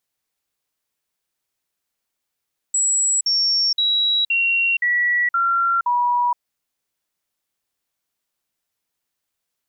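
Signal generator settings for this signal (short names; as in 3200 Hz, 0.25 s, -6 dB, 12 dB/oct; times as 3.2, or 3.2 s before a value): stepped sine 7760 Hz down, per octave 2, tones 7, 0.47 s, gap 0.05 s -15.5 dBFS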